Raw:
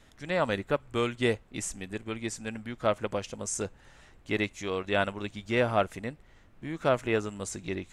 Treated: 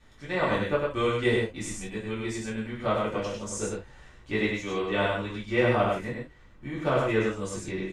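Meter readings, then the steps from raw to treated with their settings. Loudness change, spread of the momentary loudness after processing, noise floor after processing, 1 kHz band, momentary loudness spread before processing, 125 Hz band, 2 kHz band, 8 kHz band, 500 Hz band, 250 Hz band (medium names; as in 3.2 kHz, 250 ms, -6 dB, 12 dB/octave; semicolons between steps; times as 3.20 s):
+2.5 dB, 10 LU, -53 dBFS, +2.5 dB, 11 LU, +4.0 dB, +3.0 dB, -1.5 dB, +2.5 dB, +3.0 dB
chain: treble shelf 7 kHz -8.5 dB; on a send: delay 99 ms -3 dB; on the sum: gated-style reverb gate 100 ms falling, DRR -6.5 dB; trim -6 dB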